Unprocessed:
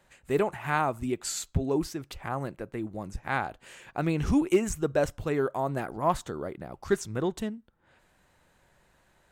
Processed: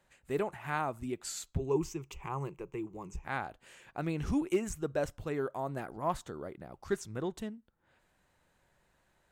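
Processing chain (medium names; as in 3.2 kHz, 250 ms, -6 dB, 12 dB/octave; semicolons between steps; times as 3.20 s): 1.59–3.25 s: rippled EQ curve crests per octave 0.73, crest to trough 13 dB; trim -7 dB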